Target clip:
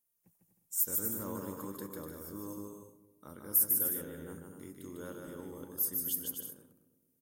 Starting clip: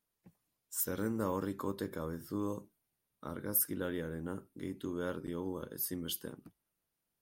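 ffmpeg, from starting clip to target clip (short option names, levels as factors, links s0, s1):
-filter_complex "[0:a]asplit=2[s0][s1];[s1]aecho=0:1:150|247.5|310.9|352.1|378.8:0.631|0.398|0.251|0.158|0.1[s2];[s0][s2]amix=inputs=2:normalize=0,aexciter=amount=2:drive=9.6:freq=5900,asplit=2[s3][s4];[s4]adelay=221,lowpass=f=840:p=1,volume=0.178,asplit=2[s5][s6];[s6]adelay=221,lowpass=f=840:p=1,volume=0.49,asplit=2[s7][s8];[s8]adelay=221,lowpass=f=840:p=1,volume=0.49,asplit=2[s9][s10];[s10]adelay=221,lowpass=f=840:p=1,volume=0.49,asplit=2[s11][s12];[s12]adelay=221,lowpass=f=840:p=1,volume=0.49[s13];[s5][s7][s9][s11][s13]amix=inputs=5:normalize=0[s14];[s3][s14]amix=inputs=2:normalize=0,volume=0.398"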